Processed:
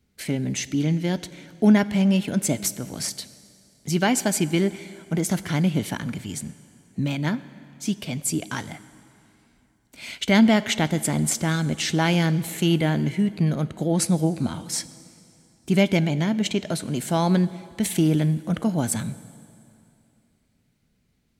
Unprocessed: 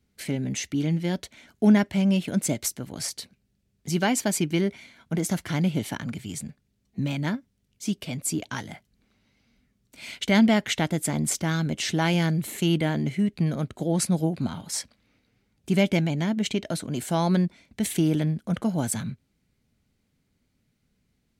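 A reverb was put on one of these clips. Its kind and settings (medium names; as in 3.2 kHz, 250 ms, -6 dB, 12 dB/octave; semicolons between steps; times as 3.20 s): plate-style reverb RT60 2.7 s, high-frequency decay 0.9×, DRR 15.5 dB; trim +2.5 dB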